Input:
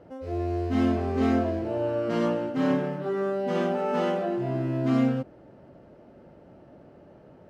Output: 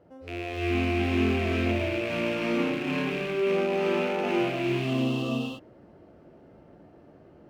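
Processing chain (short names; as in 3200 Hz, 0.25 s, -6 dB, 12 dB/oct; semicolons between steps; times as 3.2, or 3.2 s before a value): rattling part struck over -34 dBFS, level -19 dBFS; spectral repair 4.45–5.3, 1300–2600 Hz both; non-linear reverb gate 0.38 s rising, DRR -5 dB; gain -7.5 dB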